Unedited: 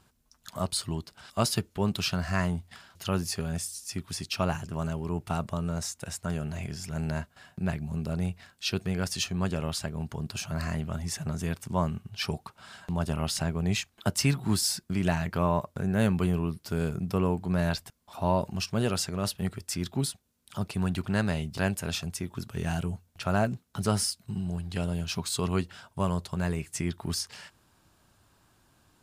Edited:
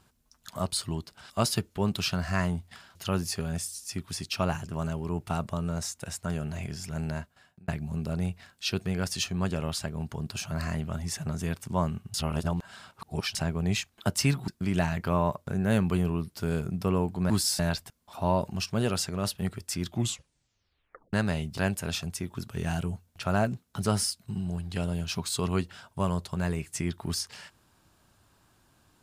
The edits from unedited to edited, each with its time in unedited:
6.75–7.68 fade out equal-power
12.14–13.35 reverse
14.48–14.77 move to 17.59
19.85 tape stop 1.28 s

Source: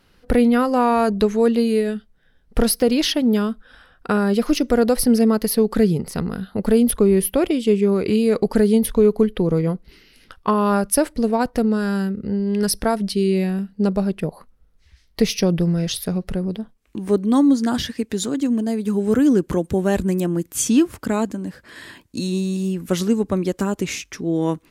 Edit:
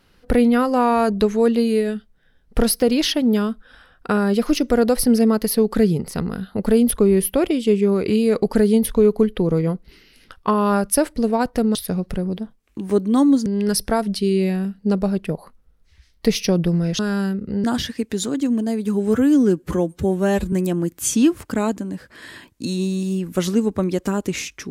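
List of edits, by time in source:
11.75–12.4 swap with 15.93–17.64
19.13–20.06 stretch 1.5×

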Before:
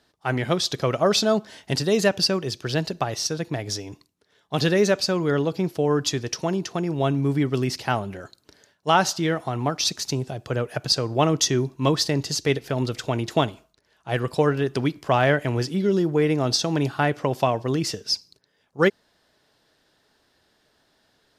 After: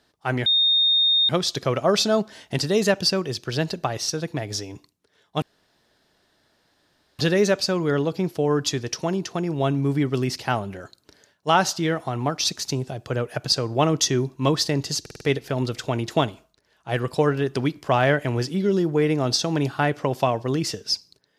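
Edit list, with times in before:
0.46 add tone 3680 Hz -15.5 dBFS 0.83 s
4.59 insert room tone 1.77 s
12.41 stutter 0.05 s, 5 plays

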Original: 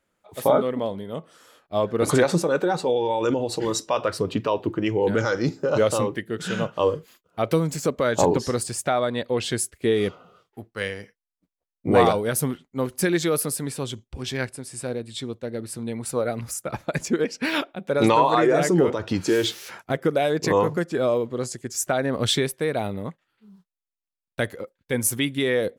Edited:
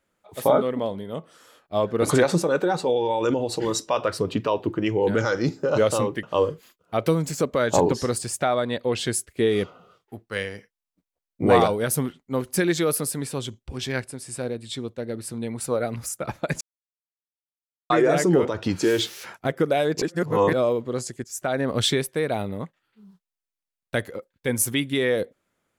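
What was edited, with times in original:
6.23–6.68 cut
17.06–18.35 mute
20.47–20.98 reverse
21.69–22.04 fade in linear, from -15 dB

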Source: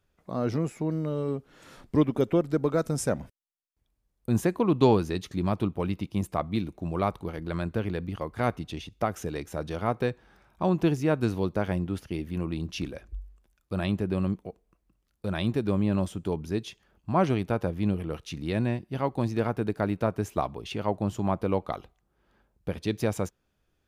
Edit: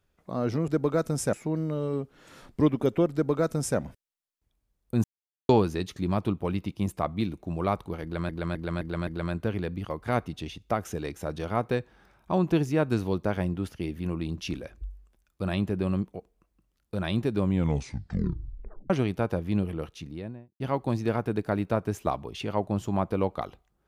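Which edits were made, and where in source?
2.48–3.13 copy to 0.68
4.39–4.84 mute
7.38–7.64 loop, 5 plays
15.72 tape stop 1.49 s
18.01–18.91 studio fade out

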